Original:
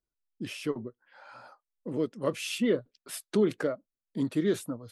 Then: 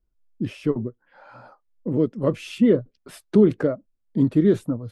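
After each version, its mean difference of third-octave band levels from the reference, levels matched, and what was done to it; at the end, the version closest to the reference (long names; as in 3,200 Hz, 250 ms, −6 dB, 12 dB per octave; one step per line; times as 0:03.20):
5.0 dB: spectral tilt −3.5 dB per octave
level +3.5 dB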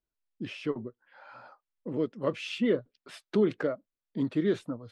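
1.5 dB: low-pass filter 3,700 Hz 12 dB per octave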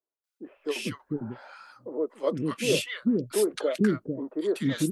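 12.0 dB: three-band delay without the direct sound mids, highs, lows 240/450 ms, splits 350/1,100 Hz
level +5.5 dB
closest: second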